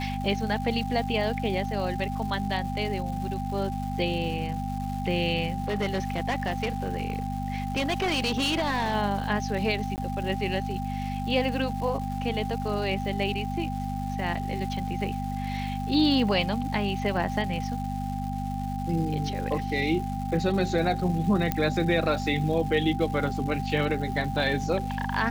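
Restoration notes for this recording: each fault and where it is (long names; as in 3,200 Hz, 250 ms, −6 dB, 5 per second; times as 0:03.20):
surface crackle 520 per second −37 dBFS
mains hum 50 Hz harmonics 5 −32 dBFS
whistle 790 Hz −34 dBFS
0:05.68–0:08.95: clipping −22.5 dBFS
0:09.96–0:09.98: drop-out 19 ms
0:21.52: click −11 dBFS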